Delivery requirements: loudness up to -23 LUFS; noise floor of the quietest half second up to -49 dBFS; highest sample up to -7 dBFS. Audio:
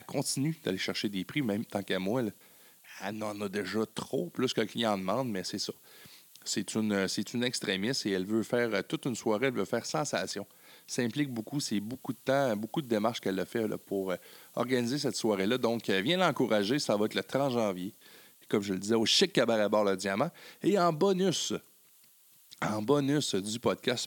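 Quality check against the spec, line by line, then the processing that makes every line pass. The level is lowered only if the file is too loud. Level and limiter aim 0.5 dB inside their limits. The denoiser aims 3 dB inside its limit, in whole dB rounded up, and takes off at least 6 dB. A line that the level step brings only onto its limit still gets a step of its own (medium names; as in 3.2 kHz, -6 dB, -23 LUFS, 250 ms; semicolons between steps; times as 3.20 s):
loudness -31.0 LUFS: pass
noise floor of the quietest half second -61 dBFS: pass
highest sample -11.5 dBFS: pass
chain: none needed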